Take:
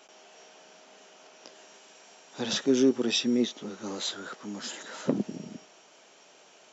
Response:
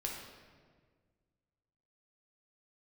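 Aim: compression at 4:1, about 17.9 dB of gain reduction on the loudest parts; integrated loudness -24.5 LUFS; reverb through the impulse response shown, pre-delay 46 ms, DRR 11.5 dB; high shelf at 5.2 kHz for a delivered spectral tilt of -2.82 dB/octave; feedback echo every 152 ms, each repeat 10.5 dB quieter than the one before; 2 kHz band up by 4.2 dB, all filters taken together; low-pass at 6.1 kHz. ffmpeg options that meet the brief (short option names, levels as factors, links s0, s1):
-filter_complex "[0:a]lowpass=6100,equalizer=f=2000:t=o:g=4.5,highshelf=f=5200:g=7.5,acompressor=threshold=0.01:ratio=4,aecho=1:1:152|304|456:0.299|0.0896|0.0269,asplit=2[s0][s1];[1:a]atrim=start_sample=2205,adelay=46[s2];[s1][s2]afir=irnorm=-1:irlink=0,volume=0.237[s3];[s0][s3]amix=inputs=2:normalize=0,volume=8.41"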